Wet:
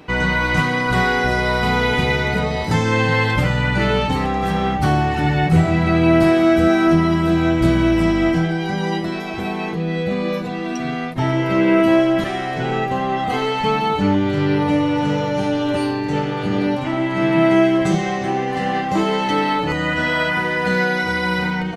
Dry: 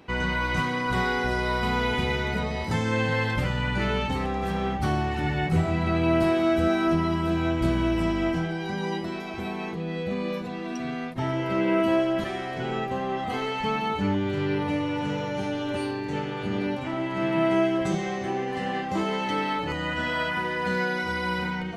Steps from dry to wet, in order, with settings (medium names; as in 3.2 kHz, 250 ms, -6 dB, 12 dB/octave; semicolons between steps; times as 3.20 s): comb 6.6 ms, depth 30%; trim +8 dB